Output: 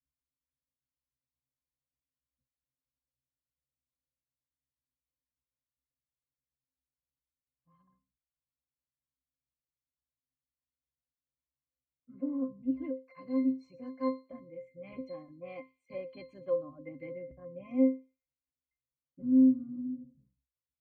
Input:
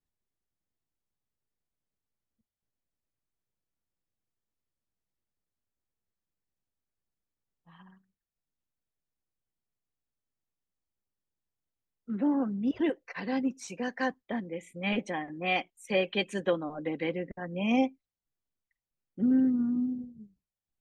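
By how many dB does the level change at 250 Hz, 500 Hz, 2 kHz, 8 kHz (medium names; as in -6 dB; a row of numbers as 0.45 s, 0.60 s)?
-1.5 dB, -4.5 dB, -21.0 dB, under -25 dB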